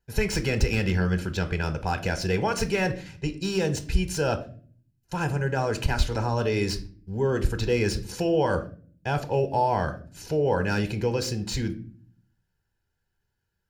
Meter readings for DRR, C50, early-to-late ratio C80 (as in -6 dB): 8.5 dB, 15.0 dB, 18.5 dB